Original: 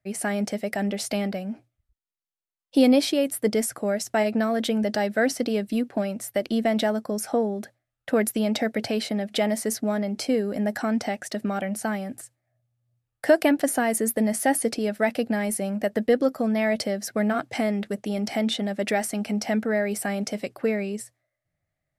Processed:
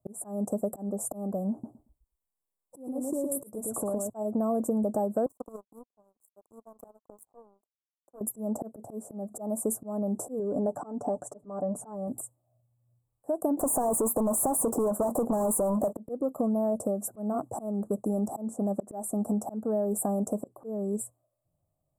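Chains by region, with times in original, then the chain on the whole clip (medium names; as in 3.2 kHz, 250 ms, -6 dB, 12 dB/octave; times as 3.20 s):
1.52–4.10 s: compression 16:1, threshold -29 dBFS + feedback delay 114 ms, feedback 17%, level -3 dB
5.26–8.21 s: high-pass 310 Hz + power-law waveshaper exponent 3
10.39–12.08 s: low-pass 6 kHz + comb 6.9 ms, depth 56%
13.57–15.93 s: compression, threshold -22 dBFS + overdrive pedal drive 27 dB, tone 7.6 kHz, clips at -15.5 dBFS
whole clip: Chebyshev band-stop 1.1–7.6 kHz, order 4; slow attack 351 ms; compression 4:1, threshold -29 dBFS; trim +3.5 dB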